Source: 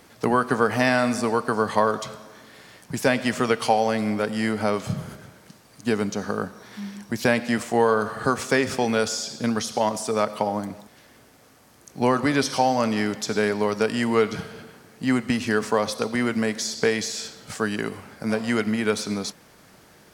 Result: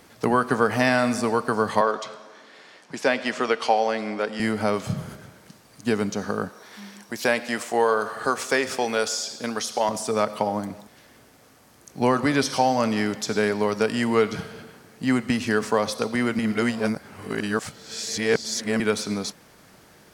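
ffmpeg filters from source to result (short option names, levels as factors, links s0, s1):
-filter_complex "[0:a]asettb=1/sr,asplit=3[s0][s1][s2];[s0]atrim=end=1.814[s3];[s1]atrim=start=1.81:end=4.4,asetpts=PTS-STARTPTS,afade=t=in:d=0.004:c=qsin,afade=t=out:st=2.586:d=0.004:c=qsin,highpass=310,lowpass=5900[s4];[s2]atrim=start=4.396[s5];[s3][s4]acrossfade=d=0.004:c1=hsin:c2=qsin[s6];[s6][s5]acrossfade=d=0.004:c1=qsin:c2=hsin,asettb=1/sr,asplit=3[s7][s8][s9];[s7]atrim=end=6.494[s10];[s8]atrim=start=6.49:end=9.89,asetpts=PTS-STARTPTS,afade=t=in:d=0.004:c=qsin,afade=t=out:st=3.396:d=0.004:c=qsin,bass=f=250:g=-13,treble=f=4000:g=1[s11];[s9]atrim=start=9.886[s12];[s10][s11]acrossfade=d=0.004:c1=hsin:c2=qsin[s13];[s13][s12]acrossfade=d=0.004:c1=qsin:c2=hsin,asplit=3[s14][s15][s16];[s14]atrim=end=16.392[s17];[s15]atrim=start=16.388:end=18.802,asetpts=PTS-STARTPTS,areverse[s18];[s16]atrim=start=18.798[s19];[s17][s18]acrossfade=d=0.004:c1=hsin:c2=hsin[s20];[s20][s19]acrossfade=d=0.004:c1=hsin:c2=hsin"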